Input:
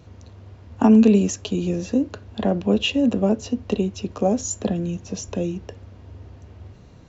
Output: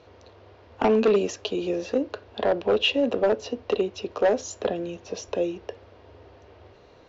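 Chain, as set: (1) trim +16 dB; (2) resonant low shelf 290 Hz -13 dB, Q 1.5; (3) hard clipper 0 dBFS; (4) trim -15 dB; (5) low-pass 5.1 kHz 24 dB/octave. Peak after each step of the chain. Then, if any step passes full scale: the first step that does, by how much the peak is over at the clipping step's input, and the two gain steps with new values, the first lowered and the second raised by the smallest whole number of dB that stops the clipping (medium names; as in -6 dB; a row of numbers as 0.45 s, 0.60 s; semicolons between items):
+11.0 dBFS, +9.0 dBFS, 0.0 dBFS, -15.0 dBFS, -13.5 dBFS; step 1, 9.0 dB; step 1 +7 dB, step 4 -6 dB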